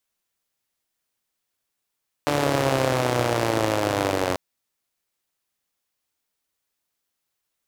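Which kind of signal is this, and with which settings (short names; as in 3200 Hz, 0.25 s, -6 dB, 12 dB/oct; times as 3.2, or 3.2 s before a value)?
four-cylinder engine model, changing speed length 2.09 s, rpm 4400, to 2700, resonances 130/320/520 Hz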